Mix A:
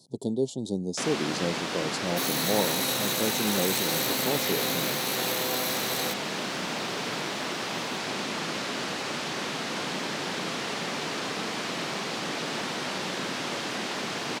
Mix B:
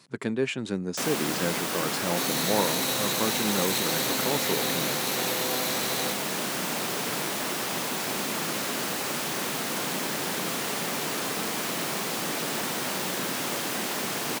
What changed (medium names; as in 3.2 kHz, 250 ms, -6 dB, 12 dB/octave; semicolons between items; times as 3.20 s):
speech: remove inverse Chebyshev band-stop 1.2–2.6 kHz, stop band 40 dB; first sound: remove Chebyshev low-pass 4.6 kHz, order 2; master: add treble shelf 12 kHz -4 dB